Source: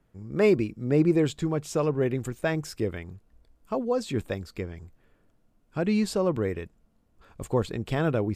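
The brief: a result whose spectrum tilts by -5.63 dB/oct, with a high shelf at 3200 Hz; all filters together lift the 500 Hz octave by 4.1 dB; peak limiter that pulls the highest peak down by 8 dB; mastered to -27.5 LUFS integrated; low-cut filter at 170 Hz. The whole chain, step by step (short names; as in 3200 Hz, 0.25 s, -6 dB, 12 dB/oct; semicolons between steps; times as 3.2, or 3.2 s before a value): HPF 170 Hz; bell 500 Hz +5 dB; high shelf 3200 Hz +4 dB; gain +0.5 dB; limiter -15.5 dBFS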